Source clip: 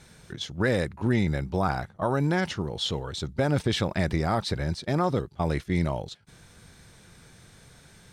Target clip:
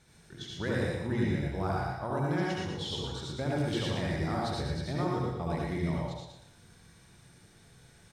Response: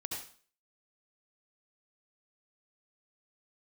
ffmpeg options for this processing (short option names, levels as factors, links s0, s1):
-filter_complex "[0:a]aecho=1:1:117|234|351|468:0.562|0.197|0.0689|0.0241[s0];[1:a]atrim=start_sample=2205[s1];[s0][s1]afir=irnorm=-1:irlink=0,volume=0.422"